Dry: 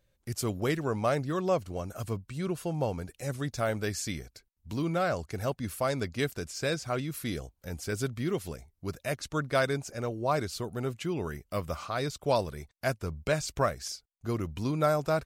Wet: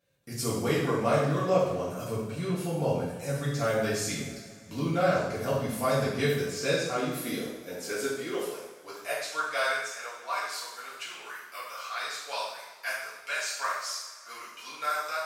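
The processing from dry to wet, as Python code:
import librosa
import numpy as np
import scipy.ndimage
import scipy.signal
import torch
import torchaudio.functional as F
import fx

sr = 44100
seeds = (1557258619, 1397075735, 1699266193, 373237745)

y = fx.rev_double_slope(x, sr, seeds[0], early_s=0.84, late_s=3.4, knee_db=-19, drr_db=-9.0)
y = fx.filter_sweep_highpass(y, sr, from_hz=140.0, to_hz=1400.0, start_s=6.45, end_s=10.26, q=1.1)
y = y * librosa.db_to_amplitude(-6.0)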